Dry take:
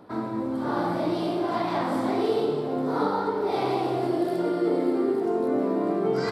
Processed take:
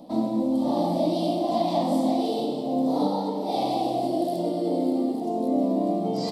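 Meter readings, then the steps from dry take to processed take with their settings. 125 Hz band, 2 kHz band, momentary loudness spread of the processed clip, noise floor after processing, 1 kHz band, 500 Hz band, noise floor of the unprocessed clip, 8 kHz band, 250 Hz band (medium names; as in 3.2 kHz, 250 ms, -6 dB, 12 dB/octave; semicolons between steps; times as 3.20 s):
+1.0 dB, under -10 dB, 3 LU, -30 dBFS, +1.0 dB, -1.0 dB, -29 dBFS, no reading, +2.5 dB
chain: high-order bell 1.5 kHz -9.5 dB; hum notches 50/100/150 Hz; in parallel at +1.5 dB: gain riding; on the sum: static phaser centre 400 Hz, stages 6; trim -1.5 dB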